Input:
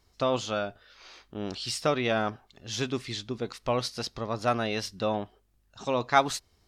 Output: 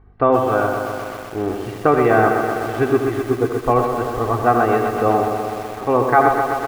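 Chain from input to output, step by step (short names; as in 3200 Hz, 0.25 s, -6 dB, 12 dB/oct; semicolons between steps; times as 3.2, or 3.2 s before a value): LPF 1700 Hz 24 dB/oct; comb 2.6 ms, depth 62%; hum 50 Hz, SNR 33 dB; on a send: echo 81 ms -9.5 dB; on the sum: maximiser +12.5 dB; lo-fi delay 0.126 s, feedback 80%, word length 6-bit, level -6 dB; gain -1.5 dB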